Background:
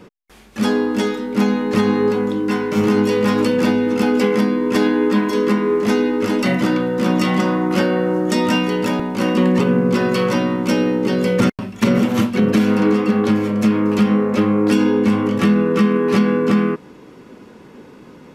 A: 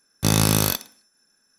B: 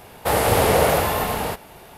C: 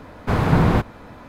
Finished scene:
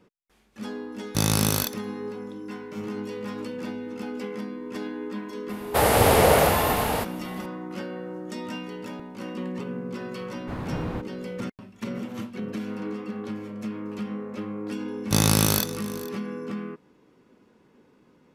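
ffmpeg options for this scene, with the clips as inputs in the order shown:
-filter_complex "[1:a]asplit=2[s0][s1];[0:a]volume=0.133[s2];[s1]aecho=1:1:453:0.126[s3];[s0]atrim=end=1.58,asetpts=PTS-STARTPTS,volume=0.631,afade=t=in:d=0.004:c=hsin,afade=t=out:st=1.576:d=0.004:c=hsin,adelay=920[s4];[2:a]atrim=end=1.97,asetpts=PTS-STARTPTS,volume=0.944,afade=t=in:d=0.004:c=hsin,afade=t=out:st=1.966:d=0.004:c=hsin,adelay=242109S[s5];[3:a]atrim=end=1.28,asetpts=PTS-STARTPTS,volume=0.168,afade=t=in:d=0.004:c=hsin,afade=t=out:st=1.276:d=0.004:c=hsin,adelay=10200[s6];[s3]atrim=end=1.58,asetpts=PTS-STARTPTS,volume=0.841,afade=t=in:d=0.004:c=hsin,afade=t=out:st=1.576:d=0.004:c=hsin,adelay=14880[s7];[s2][s4][s5][s6][s7]amix=inputs=5:normalize=0"

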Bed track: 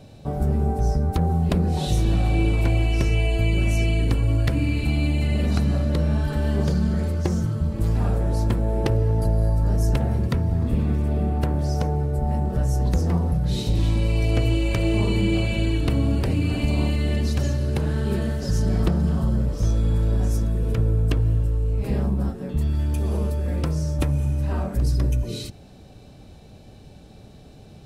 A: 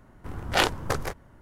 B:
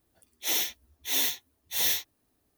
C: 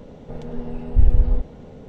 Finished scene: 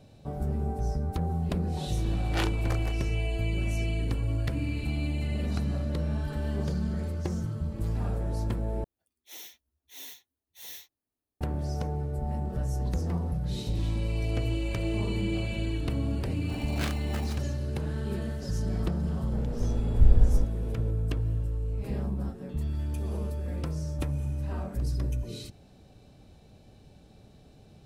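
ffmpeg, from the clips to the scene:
-filter_complex "[1:a]asplit=2[s0][s1];[0:a]volume=0.376[s2];[s1]aeval=exprs='val(0)*sgn(sin(2*PI*790*n/s))':c=same[s3];[s2]asplit=2[s4][s5];[s4]atrim=end=8.844[s6];[2:a]atrim=end=2.57,asetpts=PTS-STARTPTS,volume=0.133[s7];[s5]atrim=start=11.406[s8];[s0]atrim=end=1.41,asetpts=PTS-STARTPTS,volume=0.299,afade=t=in:d=0.004:c=hsin,afade=t=out:st=1.406:d=0.004:c=hsin,adelay=1800[s9];[s3]atrim=end=1.41,asetpts=PTS-STARTPTS,volume=0.188,afade=t=in:d=0.004:c=hsin,afade=t=out:st=1.406:d=0.004:c=hsin,adelay=16240[s10];[3:a]atrim=end=1.88,asetpts=PTS-STARTPTS,volume=0.562,afade=t=in:d=0.004:c=hsin,afade=t=out:st=1.876:d=0.004:c=hsin,adelay=19030[s11];[s6][s7]acrossfade=d=0.004:c1=hsin:c2=hsin[s12];[s12][s8]acrossfade=d=0.004:c1=hsin:c2=hsin[s13];[s13][s9][s10][s11]amix=inputs=4:normalize=0"

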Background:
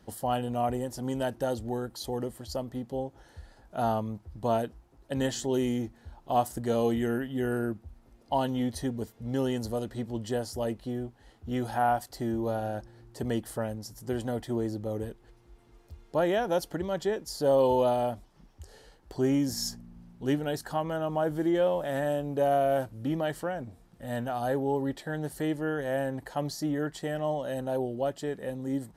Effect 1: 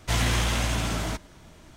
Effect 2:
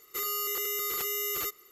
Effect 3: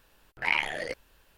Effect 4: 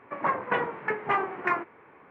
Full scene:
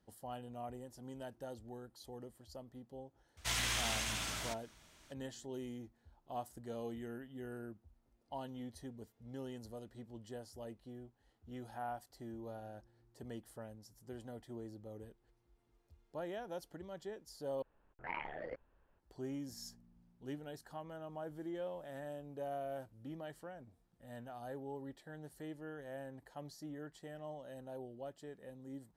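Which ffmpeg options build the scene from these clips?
-filter_complex "[0:a]volume=0.141[s0];[1:a]tiltshelf=f=970:g=-7[s1];[3:a]lowpass=1200[s2];[s0]asplit=2[s3][s4];[s3]atrim=end=17.624[s5];[s2]atrim=end=1.37,asetpts=PTS-STARTPTS,volume=0.376[s6];[s4]atrim=start=18.986[s7];[s1]atrim=end=1.76,asetpts=PTS-STARTPTS,volume=0.237,afade=t=in:d=0.004:c=hsin,afade=t=out:st=1.756:d=0.004:c=hsin,adelay=148617S[s8];[s5][s6]acrossfade=d=0.004:c1=hsin:c2=hsin[s9];[s9][s7]acrossfade=d=0.004:c1=hsin:c2=hsin[s10];[s10][s8]amix=inputs=2:normalize=0"

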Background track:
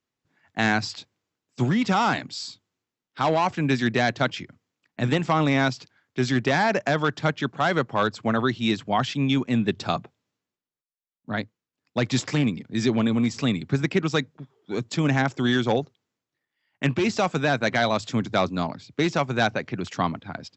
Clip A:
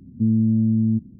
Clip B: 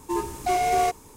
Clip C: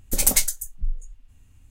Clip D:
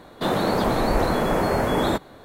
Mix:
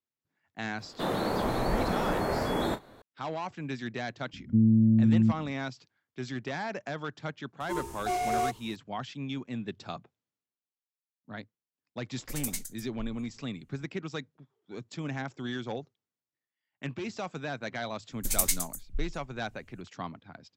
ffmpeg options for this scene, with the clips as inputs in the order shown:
-filter_complex "[3:a]asplit=2[s0][s1];[0:a]volume=0.211[s2];[4:a]asplit=2[s3][s4];[s4]adelay=33,volume=0.266[s5];[s3][s5]amix=inputs=2:normalize=0[s6];[s1]equalizer=f=530:w=0.64:g=-10[s7];[s6]atrim=end=2.24,asetpts=PTS-STARTPTS,volume=0.398,afade=t=in:d=0.004:c=hsin,afade=t=out:st=2.236:d=0.004:c=hsin,adelay=780[s8];[1:a]atrim=end=1.19,asetpts=PTS-STARTPTS,volume=0.708,afade=t=in:d=0.004:c=hsin,afade=t=out:st=1.186:d=0.004:c=hsin,adelay=190953S[s9];[2:a]atrim=end=1.16,asetpts=PTS-STARTPTS,volume=0.447,afade=t=in:d=0.004:c=hsin,afade=t=out:st=1.156:d=0.004:c=hsin,adelay=7600[s10];[s0]atrim=end=1.7,asetpts=PTS-STARTPTS,volume=0.15,afade=t=in:d=0.004:c=hsin,afade=t=out:st=1.696:d=0.004:c=hsin,adelay=12170[s11];[s7]atrim=end=1.7,asetpts=PTS-STARTPTS,volume=0.422,afade=t=in:d=0.004:c=hsin,afade=t=out:st=1.696:d=0.004:c=hsin,adelay=799092S[s12];[s2][s8][s9][s10][s11][s12]amix=inputs=6:normalize=0"

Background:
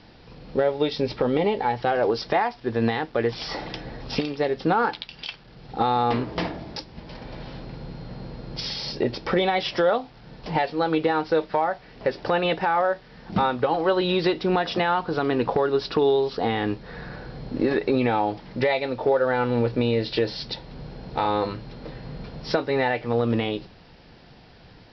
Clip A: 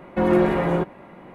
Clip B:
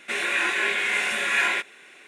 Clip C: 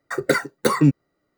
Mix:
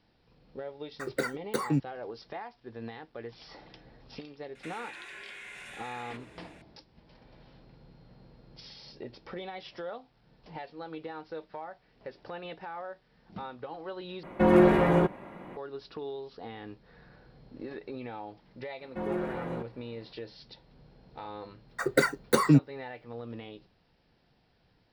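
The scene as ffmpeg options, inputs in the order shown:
-filter_complex "[3:a]asplit=2[s0][s1];[1:a]asplit=2[s2][s3];[0:a]volume=0.119[s4];[2:a]acompressor=threshold=0.0224:ratio=6:attack=3.2:release=140:knee=1:detection=peak[s5];[s4]asplit=2[s6][s7];[s6]atrim=end=14.234[s8];[s2]atrim=end=1.34,asetpts=PTS-STARTPTS,volume=0.841[s9];[s7]atrim=start=15.566[s10];[s0]atrim=end=1.37,asetpts=PTS-STARTPTS,volume=0.251,afade=t=in:d=0.004:c=hsin,afade=t=out:st=1.366:d=0.004:c=hsin,adelay=890[s11];[s5]atrim=end=2.07,asetpts=PTS-STARTPTS,volume=0.316,afade=t=in:d=0.004:c=hsin,afade=t=out:st=2.066:d=0.004:c=hsin,adelay=4550[s12];[s3]atrim=end=1.34,asetpts=PTS-STARTPTS,volume=0.178,afade=t=in:d=0.004:c=hsin,afade=t=out:st=1.336:d=0.004:c=hsin,adelay=18790[s13];[s1]atrim=end=1.37,asetpts=PTS-STARTPTS,volume=0.596,afade=t=in:d=0.004:c=hsin,afade=t=out:st=1.366:d=0.004:c=hsin,adelay=21680[s14];[s8][s9]acrossfade=d=0.004:c1=hsin:c2=hsin[s15];[s15][s10]acrossfade=d=0.004:c1=hsin:c2=hsin[s16];[s16][s11][s12][s13][s14]amix=inputs=5:normalize=0"

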